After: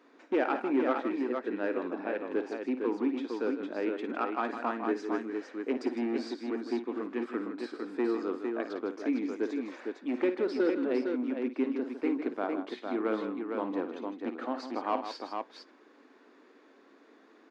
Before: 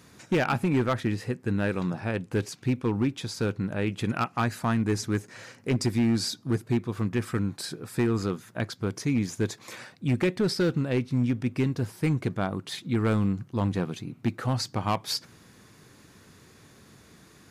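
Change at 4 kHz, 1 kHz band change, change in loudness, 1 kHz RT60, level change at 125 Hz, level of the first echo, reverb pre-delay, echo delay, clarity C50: -13.5 dB, -2.0 dB, -4.5 dB, none, under -30 dB, -11.0 dB, none, 55 ms, none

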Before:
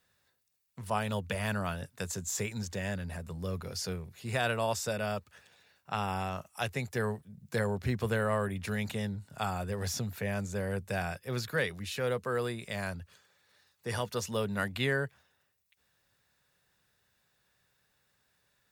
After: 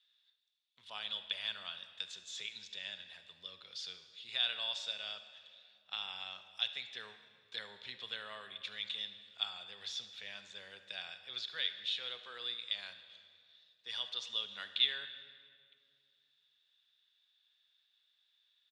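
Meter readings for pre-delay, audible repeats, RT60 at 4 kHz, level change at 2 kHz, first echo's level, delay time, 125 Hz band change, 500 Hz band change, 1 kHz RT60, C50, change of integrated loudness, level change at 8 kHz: 30 ms, 1, 1.6 s, -9.0 dB, -19.0 dB, 74 ms, under -35 dB, -23.0 dB, 2.0 s, 10.0 dB, -5.0 dB, -15.5 dB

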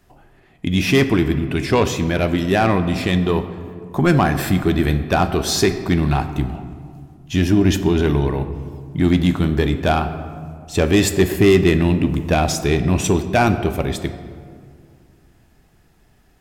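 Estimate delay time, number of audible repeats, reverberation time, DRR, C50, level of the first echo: none, none, 2.2 s, 9.0 dB, 11.0 dB, none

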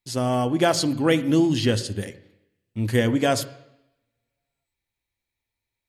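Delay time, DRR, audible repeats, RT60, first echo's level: none, 11.0 dB, none, 0.85 s, none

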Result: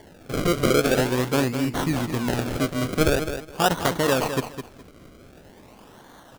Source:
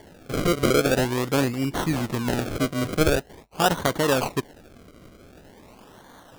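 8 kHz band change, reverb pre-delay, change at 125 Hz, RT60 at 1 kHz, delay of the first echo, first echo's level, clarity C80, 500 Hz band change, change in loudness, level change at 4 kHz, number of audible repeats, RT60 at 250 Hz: +0.5 dB, none, +0.5 dB, none, 0.208 s, -9.0 dB, none, +0.5 dB, +0.5 dB, +0.5 dB, 2, none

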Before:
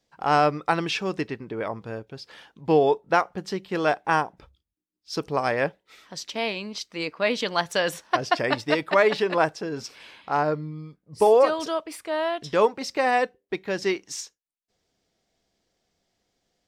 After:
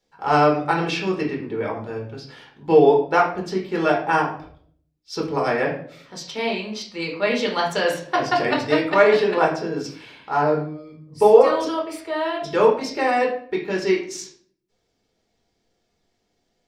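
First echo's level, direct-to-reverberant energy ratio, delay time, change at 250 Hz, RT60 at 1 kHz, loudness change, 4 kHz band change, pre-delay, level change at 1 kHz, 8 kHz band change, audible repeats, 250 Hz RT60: none, -2.0 dB, none, +5.5 dB, 0.50 s, +4.0 dB, +1.0 dB, 5 ms, +3.0 dB, +0.5 dB, none, 0.80 s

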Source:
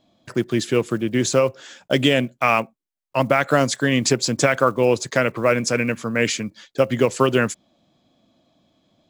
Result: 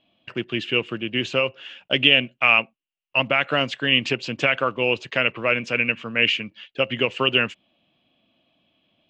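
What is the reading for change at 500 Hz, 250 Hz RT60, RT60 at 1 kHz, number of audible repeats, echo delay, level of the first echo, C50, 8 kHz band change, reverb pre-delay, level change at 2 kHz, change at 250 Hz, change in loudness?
-6.0 dB, none, none, none, none, none, none, under -20 dB, none, +3.5 dB, -7.0 dB, -0.5 dB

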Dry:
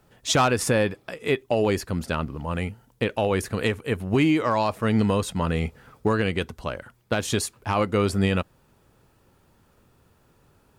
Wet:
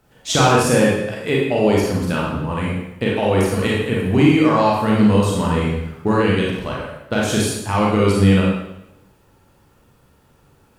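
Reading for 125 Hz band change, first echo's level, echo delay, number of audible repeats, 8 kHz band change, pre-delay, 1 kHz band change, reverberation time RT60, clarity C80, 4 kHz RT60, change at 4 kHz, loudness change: +7.5 dB, none, none, none, +5.0 dB, 29 ms, +6.5 dB, 0.90 s, 3.5 dB, 0.80 s, +5.5 dB, +7.0 dB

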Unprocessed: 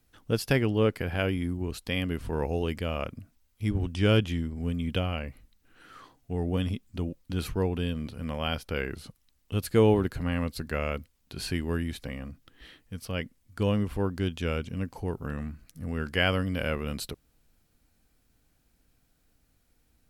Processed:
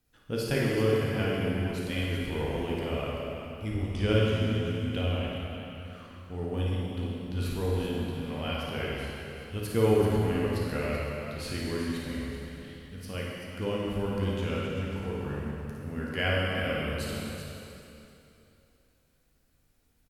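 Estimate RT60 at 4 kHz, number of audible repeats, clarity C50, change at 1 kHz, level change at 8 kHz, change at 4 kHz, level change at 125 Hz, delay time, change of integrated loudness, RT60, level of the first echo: 2.7 s, 2, -3.5 dB, -0.5 dB, -1.0 dB, -1.0 dB, -0.5 dB, 55 ms, -1.0 dB, 2.9 s, -5.5 dB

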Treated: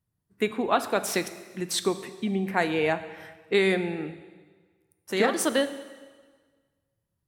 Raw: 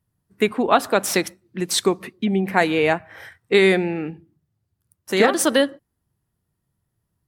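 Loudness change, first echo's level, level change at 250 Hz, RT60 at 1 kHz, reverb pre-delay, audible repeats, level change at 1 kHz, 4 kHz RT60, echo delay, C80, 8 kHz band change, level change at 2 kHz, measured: -7.0 dB, none, -6.5 dB, 1.5 s, 7 ms, none, -6.5 dB, 1.4 s, none, 14.0 dB, -6.5 dB, -6.5 dB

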